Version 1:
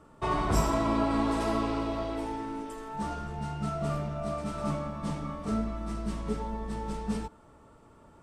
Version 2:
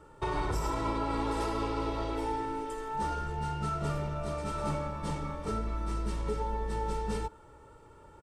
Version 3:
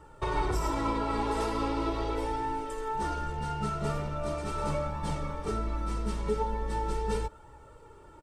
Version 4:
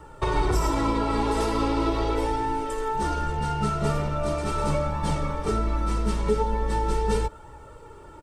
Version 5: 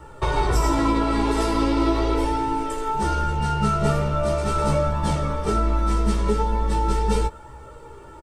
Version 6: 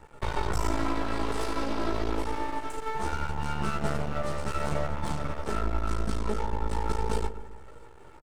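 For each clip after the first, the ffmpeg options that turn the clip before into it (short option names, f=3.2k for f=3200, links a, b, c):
-af "aecho=1:1:2.2:0.61,alimiter=limit=-22.5dB:level=0:latency=1:release=122"
-af "flanger=delay=1:depth=4:regen=53:speed=0.4:shape=triangular,volume=6dB"
-filter_complex "[0:a]acrossover=split=460|3000[a][b][c];[b]acompressor=threshold=-33dB:ratio=6[d];[a][d][c]amix=inputs=3:normalize=0,volume=7dB"
-filter_complex "[0:a]asplit=2[a][b];[b]adelay=15,volume=-3.5dB[c];[a][c]amix=inputs=2:normalize=0,volume=1.5dB"
-filter_complex "[0:a]aeval=exprs='max(val(0),0)':c=same,asplit=2[a][b];[b]adelay=131,lowpass=f=870:p=1,volume=-10.5dB,asplit=2[c][d];[d]adelay=131,lowpass=f=870:p=1,volume=0.51,asplit=2[e][f];[f]adelay=131,lowpass=f=870:p=1,volume=0.51,asplit=2[g][h];[h]adelay=131,lowpass=f=870:p=1,volume=0.51,asplit=2[i][j];[j]adelay=131,lowpass=f=870:p=1,volume=0.51,asplit=2[k][l];[l]adelay=131,lowpass=f=870:p=1,volume=0.51[m];[a][c][e][g][i][k][m]amix=inputs=7:normalize=0,volume=-5dB"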